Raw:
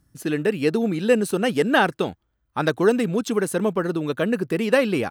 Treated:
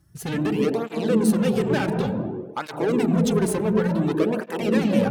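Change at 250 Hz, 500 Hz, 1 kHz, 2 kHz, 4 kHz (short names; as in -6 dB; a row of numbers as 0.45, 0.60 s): +2.0, -2.5, -4.0, -7.0, -4.0 dB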